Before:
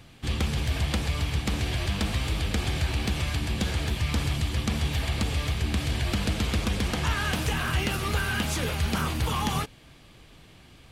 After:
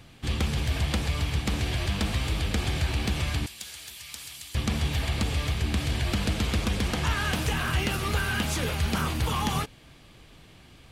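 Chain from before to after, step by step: 3.46–4.55 s: pre-emphasis filter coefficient 0.97

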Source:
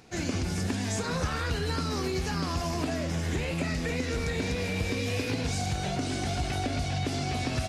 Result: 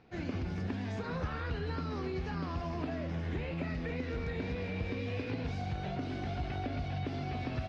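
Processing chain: distance through air 290 m; trim -5.5 dB

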